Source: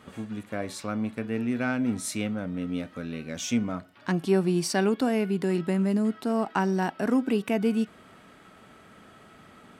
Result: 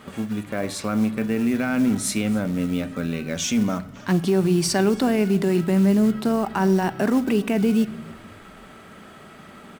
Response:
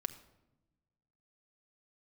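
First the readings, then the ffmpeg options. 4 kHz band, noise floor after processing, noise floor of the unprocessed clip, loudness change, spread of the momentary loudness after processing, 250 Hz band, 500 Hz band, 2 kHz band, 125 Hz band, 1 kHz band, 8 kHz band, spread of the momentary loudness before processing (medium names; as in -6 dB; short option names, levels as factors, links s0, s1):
+6.5 dB, -45 dBFS, -53 dBFS, +6.0 dB, 8 LU, +6.0 dB, +4.5 dB, +4.0 dB, +6.5 dB, +3.5 dB, +7.5 dB, 10 LU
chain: -filter_complex "[0:a]acrusher=bits=6:mode=log:mix=0:aa=0.000001,alimiter=limit=0.0944:level=0:latency=1:release=24,bandreject=f=60:t=h:w=6,bandreject=f=120:t=h:w=6,asplit=4[s0][s1][s2][s3];[s1]adelay=275,afreqshift=-61,volume=0.0668[s4];[s2]adelay=550,afreqshift=-122,volume=0.0343[s5];[s3]adelay=825,afreqshift=-183,volume=0.0174[s6];[s0][s4][s5][s6]amix=inputs=4:normalize=0,asplit=2[s7][s8];[1:a]atrim=start_sample=2205[s9];[s8][s9]afir=irnorm=-1:irlink=0,volume=1.5[s10];[s7][s10]amix=inputs=2:normalize=0"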